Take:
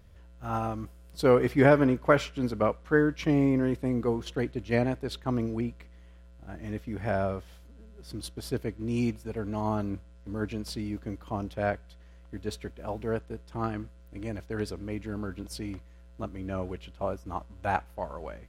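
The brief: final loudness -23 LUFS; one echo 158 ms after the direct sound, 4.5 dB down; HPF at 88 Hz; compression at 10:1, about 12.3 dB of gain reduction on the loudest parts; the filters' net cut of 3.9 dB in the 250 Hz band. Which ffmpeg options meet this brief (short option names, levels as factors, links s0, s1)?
-af "highpass=88,equalizer=f=250:t=o:g=-4.5,acompressor=threshold=0.0398:ratio=10,aecho=1:1:158:0.596,volume=4.47"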